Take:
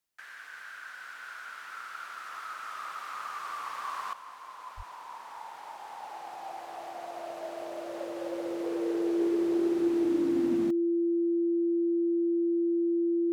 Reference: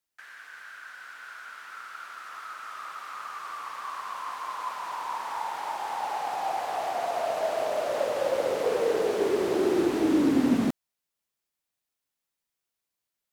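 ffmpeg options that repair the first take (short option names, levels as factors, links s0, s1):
-filter_complex "[0:a]bandreject=f=340:w=30,asplit=3[s0][s1][s2];[s0]afade=t=out:st=4.76:d=0.02[s3];[s1]highpass=f=140:w=0.5412,highpass=f=140:w=1.3066,afade=t=in:st=4.76:d=0.02,afade=t=out:st=4.88:d=0.02[s4];[s2]afade=t=in:st=4.88:d=0.02[s5];[s3][s4][s5]amix=inputs=3:normalize=0,asetnsamples=n=441:p=0,asendcmd='4.13 volume volume 11dB',volume=1"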